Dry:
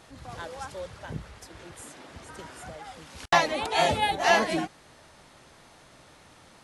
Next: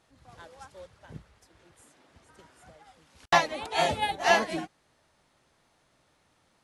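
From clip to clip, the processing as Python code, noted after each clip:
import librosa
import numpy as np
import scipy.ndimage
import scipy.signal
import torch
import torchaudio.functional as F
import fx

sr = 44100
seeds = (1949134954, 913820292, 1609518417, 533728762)

y = fx.upward_expand(x, sr, threshold_db=-45.0, expansion=1.5)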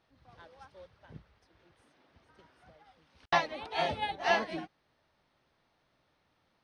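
y = scipy.signal.savgol_filter(x, 15, 4, mode='constant')
y = y * 10.0 ** (-5.5 / 20.0)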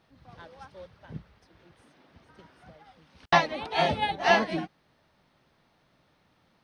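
y = fx.peak_eq(x, sr, hz=180.0, db=5.5, octaves=1.1)
y = y * 10.0 ** (6.0 / 20.0)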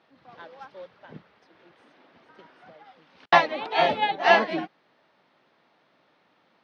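y = fx.bandpass_edges(x, sr, low_hz=280.0, high_hz=3900.0)
y = y * 10.0 ** (4.0 / 20.0)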